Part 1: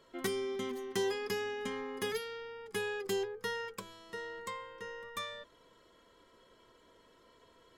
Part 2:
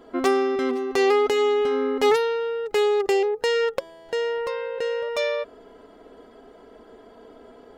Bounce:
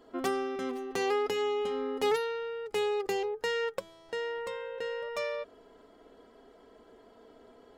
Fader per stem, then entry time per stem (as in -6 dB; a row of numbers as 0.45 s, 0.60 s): -5.5 dB, -9.0 dB; 0.00 s, 0.00 s